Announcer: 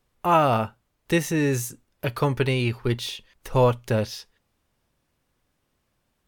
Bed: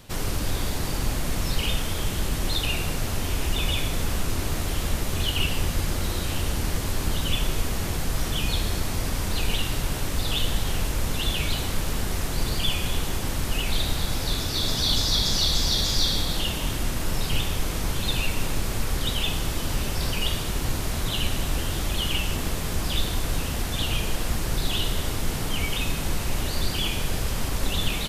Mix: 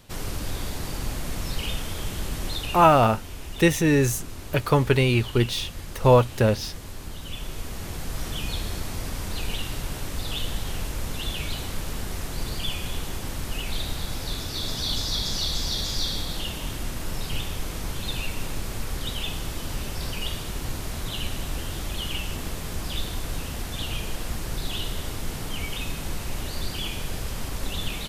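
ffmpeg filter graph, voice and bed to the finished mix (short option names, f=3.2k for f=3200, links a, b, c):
-filter_complex "[0:a]adelay=2500,volume=3dB[a];[1:a]volume=3dB,afade=t=out:st=2.45:d=0.77:silence=0.421697,afade=t=in:st=7.2:d=1.08:silence=0.446684[b];[a][b]amix=inputs=2:normalize=0"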